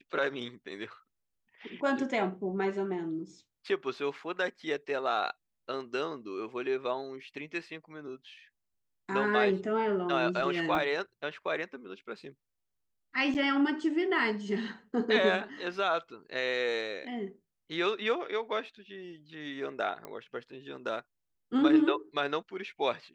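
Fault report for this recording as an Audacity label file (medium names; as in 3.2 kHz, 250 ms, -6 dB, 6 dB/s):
10.750000	10.750000	dropout 2.1 ms
13.340000	13.350000	dropout 8.6 ms
20.050000	20.050000	pop -26 dBFS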